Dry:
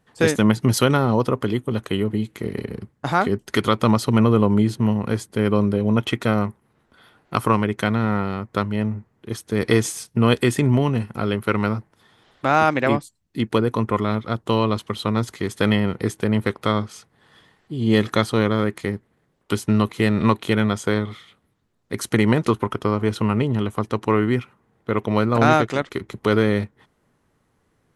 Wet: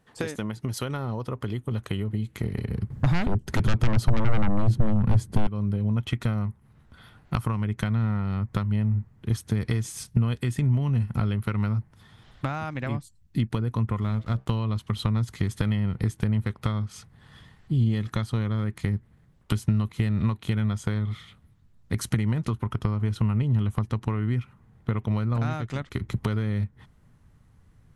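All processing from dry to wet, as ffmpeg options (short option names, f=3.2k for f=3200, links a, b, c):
-filter_complex "[0:a]asettb=1/sr,asplit=3[a][b][c];[a]atrim=end=2.904[d];[b]atrim=start=2.9:end=5.47,asetpts=PTS-STARTPTS,afade=t=in:d=0.004:c=qsin,afade=t=out:st=2.566:d=0.004:c=qsin,tiltshelf=f=850:g=5,aeval=exprs='0.841*sin(PI/2*4.47*val(0)/0.841)':c=same[e];[c]atrim=start=5.466[f];[d][e]acrossfade=d=0.004:c1=hsin:c2=qsin[g];[g][f]acrossfade=d=0.004:c1=qsin:c2=hsin,asettb=1/sr,asplit=3[h][i][j];[h]atrim=end=14.014[k];[i]atrim=start=14.01:end=14.5,asetpts=PTS-STARTPTS,afade=t=in:d=0.004:c=qsin,afade=t=out:st=0.486:d=0.004:c=qsin,bandreject=f=64.99:t=h:w=4,bandreject=f=129.98:t=h:w=4,bandreject=f=194.97:t=h:w=4,bandreject=f=259.96:t=h:w=4,bandreject=f=324.95:t=h:w=4,bandreject=f=389.94:t=h:w=4,bandreject=f=454.93:t=h:w=4,bandreject=f=519.92:t=h:w=4,bandreject=f=584.91:t=h:w=4,bandreject=f=649.9:t=h:w=4,aeval=exprs='sgn(val(0))*max(abs(val(0))-0.00708,0)':c=same[l];[j]atrim=start=14.496[m];[k][l]acrossfade=d=0.004:c1=hsin:c2=qsin[n];[n][m]acrossfade=d=0.004:c1=qsin:c2=hsin,acompressor=threshold=-27dB:ratio=12,asubboost=boost=7:cutoff=140"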